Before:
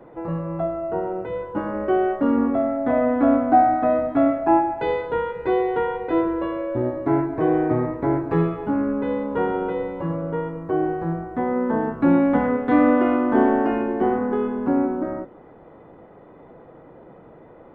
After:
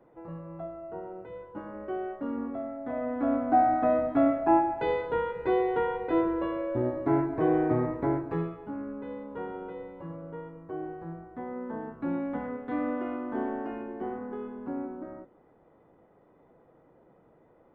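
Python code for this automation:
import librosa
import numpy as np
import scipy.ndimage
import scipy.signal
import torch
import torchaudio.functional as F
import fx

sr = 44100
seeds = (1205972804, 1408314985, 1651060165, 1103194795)

y = fx.gain(x, sr, db=fx.line((2.89, -14.0), (3.77, -5.0), (8.02, -5.0), (8.61, -14.5)))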